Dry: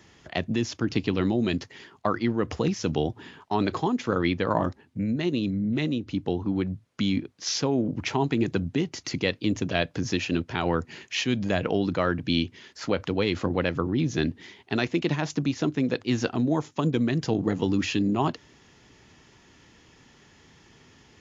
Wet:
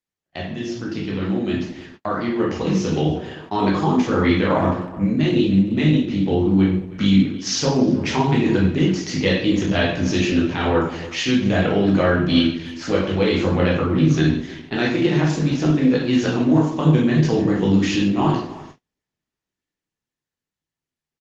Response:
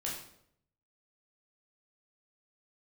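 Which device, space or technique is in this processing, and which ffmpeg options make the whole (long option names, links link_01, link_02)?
speakerphone in a meeting room: -filter_complex "[0:a]asettb=1/sr,asplit=3[link_01][link_02][link_03];[link_01]atrim=end=2.264[link_04];[link_02]atrim=start=2.26:end=3.23,asetpts=PTS-STARTPTS,afade=type=in:duration=0.004:curve=qsin,afade=type=out:start_time=0.966:duration=0.004:curve=qsin,equalizer=frequency=110:width_type=o:width=0.96:gain=-4.5[link_05];[link_03]atrim=start=3.226[link_06];[link_04][link_05]acrossfade=duration=0.004:curve1=hsin:curve2=qsin[link_07];[link_07][link_06]acrossfade=duration=0.004:curve1=qsin:curve2=hsin[link_08];[1:a]atrim=start_sample=2205[link_09];[link_08][link_09]afir=irnorm=-1:irlink=0,asplit=2[link_10][link_11];[link_11]adelay=310,highpass=300,lowpass=3400,asoftclip=type=hard:threshold=-18.5dB,volume=-16dB[link_12];[link_10][link_12]amix=inputs=2:normalize=0,dynaudnorm=framelen=140:gausssize=31:maxgain=10dB,agate=range=-37dB:threshold=-37dB:ratio=16:detection=peak,volume=-2dB" -ar 48000 -c:a libopus -b:a 20k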